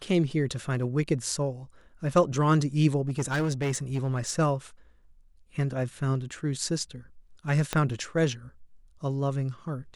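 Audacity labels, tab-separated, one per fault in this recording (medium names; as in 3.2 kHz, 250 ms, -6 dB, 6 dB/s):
3.080000	4.390000	clipped -23.5 dBFS
7.730000	7.730000	pop -12 dBFS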